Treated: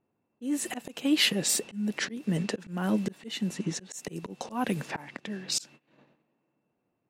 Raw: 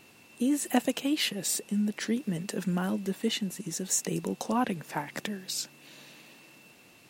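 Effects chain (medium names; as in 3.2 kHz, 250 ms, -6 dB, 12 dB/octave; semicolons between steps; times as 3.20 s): gate -48 dBFS, range -24 dB; level-controlled noise filter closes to 960 Hz, open at -27 dBFS; treble shelf 7 kHz -5.5 dB, from 4.47 s +3.5 dB, from 5.52 s +10.5 dB; slow attack 321 ms; trim +6.5 dB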